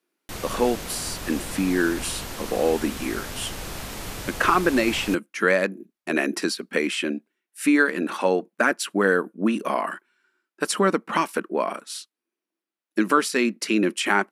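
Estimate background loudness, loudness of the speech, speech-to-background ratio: −34.0 LKFS, −24.0 LKFS, 10.0 dB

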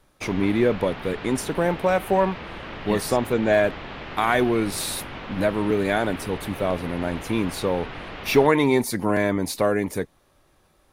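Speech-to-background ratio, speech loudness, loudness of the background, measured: 13.0 dB, −23.5 LKFS, −36.5 LKFS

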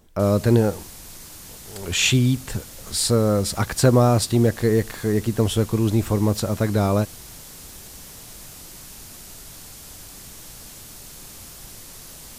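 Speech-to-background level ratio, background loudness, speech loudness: 18.5 dB, −39.0 LKFS, −20.5 LKFS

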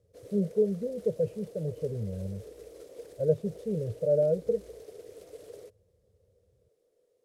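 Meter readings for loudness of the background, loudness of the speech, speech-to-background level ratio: −48.5 LKFS, −30.5 LKFS, 18.0 dB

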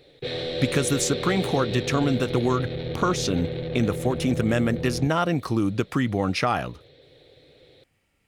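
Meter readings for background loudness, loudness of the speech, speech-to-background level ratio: −30.5 LKFS, −25.0 LKFS, 5.5 dB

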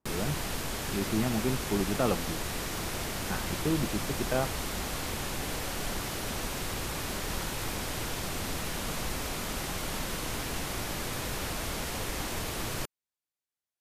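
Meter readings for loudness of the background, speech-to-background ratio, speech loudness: −34.0 LKFS, 1.0 dB, −33.0 LKFS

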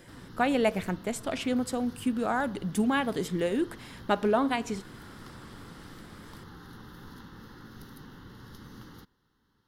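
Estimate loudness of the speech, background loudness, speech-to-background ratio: −29.5 LKFS, −48.0 LKFS, 18.5 dB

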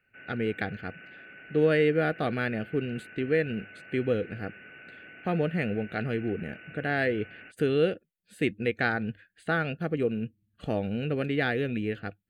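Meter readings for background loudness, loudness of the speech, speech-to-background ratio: −47.0 LKFS, −29.5 LKFS, 17.5 dB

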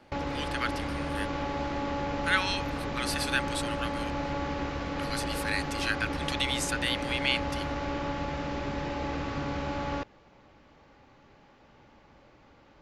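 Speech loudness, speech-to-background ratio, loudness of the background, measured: −32.0 LKFS, 1.0 dB, −33.0 LKFS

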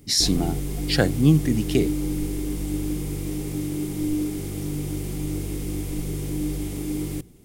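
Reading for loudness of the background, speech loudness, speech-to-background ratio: −28.5 LKFS, −22.5 LKFS, 6.0 dB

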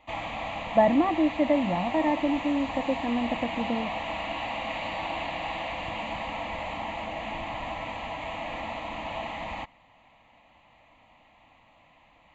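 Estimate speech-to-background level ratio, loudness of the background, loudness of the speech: 7.0 dB, −33.5 LKFS, −26.5 LKFS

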